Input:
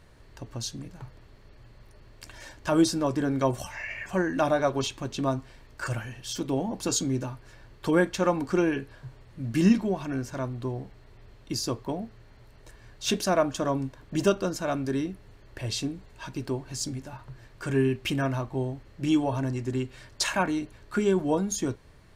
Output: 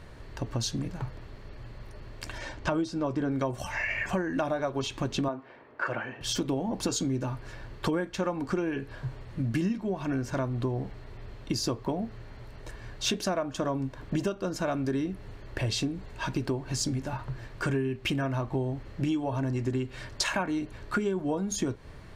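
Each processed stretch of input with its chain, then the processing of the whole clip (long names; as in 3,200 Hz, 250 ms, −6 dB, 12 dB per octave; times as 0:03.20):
0:02.38–0:03.32: high-frequency loss of the air 58 metres + notch filter 1,700 Hz, Q 19
0:05.28–0:06.21: band-pass filter 310–2,200 Hz + one half of a high-frequency compander decoder only
whole clip: high-shelf EQ 5,500 Hz −8 dB; downward compressor 10 to 1, threshold −34 dBFS; level +8 dB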